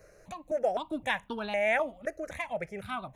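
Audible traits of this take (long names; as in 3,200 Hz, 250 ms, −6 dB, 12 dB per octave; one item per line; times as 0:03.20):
notches that jump at a steady rate 3.9 Hz 940–2,000 Hz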